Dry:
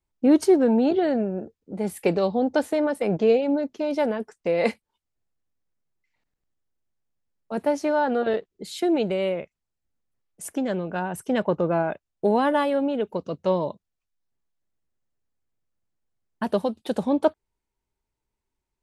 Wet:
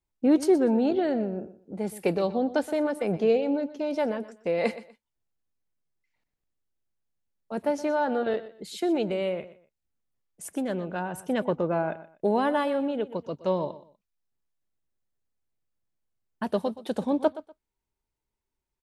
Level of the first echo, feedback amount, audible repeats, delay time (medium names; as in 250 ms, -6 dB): -15.5 dB, 24%, 2, 122 ms